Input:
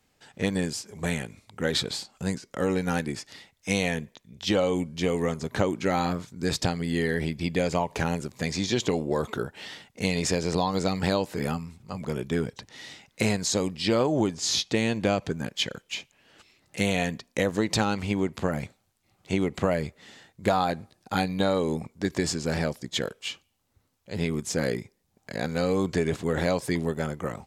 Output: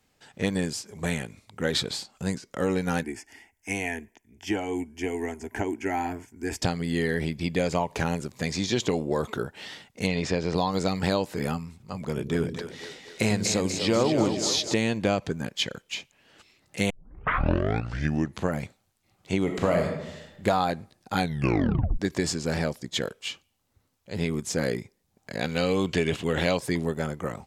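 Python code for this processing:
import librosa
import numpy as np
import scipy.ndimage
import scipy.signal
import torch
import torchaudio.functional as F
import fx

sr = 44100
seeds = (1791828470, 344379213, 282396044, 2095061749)

y = fx.fixed_phaser(x, sr, hz=800.0, stages=8, at=(3.03, 6.62))
y = fx.lowpass(y, sr, hz=4100.0, slope=12, at=(10.06, 10.54), fade=0.02)
y = fx.echo_split(y, sr, split_hz=380.0, low_ms=93, high_ms=246, feedback_pct=52, wet_db=-6.5, at=(12.05, 14.74))
y = fx.reverb_throw(y, sr, start_s=19.42, length_s=1.03, rt60_s=1.0, drr_db=2.0)
y = fx.peak_eq(y, sr, hz=2900.0, db=13.0, octaves=0.62, at=(25.41, 26.57))
y = fx.edit(y, sr, fx.tape_start(start_s=16.9, length_s=1.58),
    fx.tape_stop(start_s=21.2, length_s=0.79), tone=tone)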